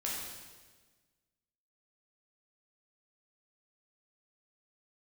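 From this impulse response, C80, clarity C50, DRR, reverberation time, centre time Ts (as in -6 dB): 2.0 dB, 0.0 dB, -5.0 dB, 1.4 s, 82 ms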